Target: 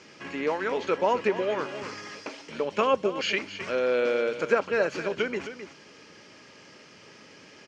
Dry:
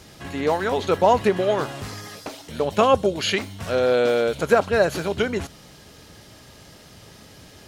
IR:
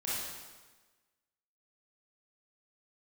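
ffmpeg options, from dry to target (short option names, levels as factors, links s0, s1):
-filter_complex "[0:a]highpass=260,equalizer=f=720:t=q:w=4:g=-9,equalizer=f=2400:t=q:w=4:g=5,equalizer=f=3800:t=q:w=4:g=-10,lowpass=f=5900:w=0.5412,lowpass=f=5900:w=1.3066,aecho=1:1:263:0.224,asplit=2[s0][s1];[s1]acompressor=threshold=0.0251:ratio=6,volume=0.708[s2];[s0][s2]amix=inputs=2:normalize=0,volume=0.531"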